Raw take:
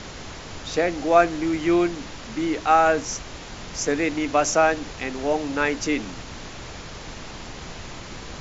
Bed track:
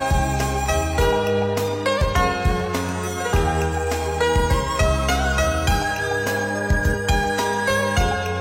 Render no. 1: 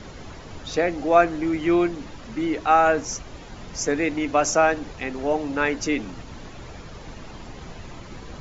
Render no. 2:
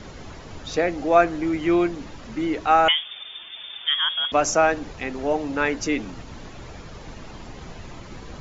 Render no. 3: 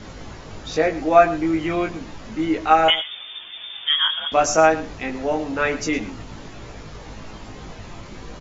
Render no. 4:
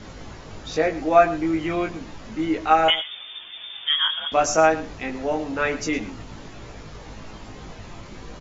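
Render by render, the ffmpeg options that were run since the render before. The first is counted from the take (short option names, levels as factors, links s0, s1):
-af "afftdn=nr=9:nf=-38"
-filter_complex "[0:a]asettb=1/sr,asplit=3[s0][s1][s2];[s0]atrim=end=2.884[s3];[s1]atrim=start=2.88:end=4.32,asetpts=PTS-STARTPTS,afade=t=in:d=0.004:c=qsin,afade=t=out:st=1.436:d=0.004:c=qsin,lowpass=f=3100:t=q:w=0.5098,lowpass=f=3100:t=q:w=0.6013,lowpass=f=3100:t=q:w=0.9,lowpass=f=3100:t=q:w=2.563,afreqshift=-3600[s4];[s2]atrim=start=4.316[s5];[s3][s4]acrossfade=d=0.004:c1=hsin:c2=qsin[s6];[s6][s5]acrossfade=d=0.004:c1=qsin:c2=hsin"
-filter_complex "[0:a]asplit=2[s0][s1];[s1]adelay=19,volume=0.708[s2];[s0][s2]amix=inputs=2:normalize=0,aecho=1:1:113:0.158"
-af "volume=0.794"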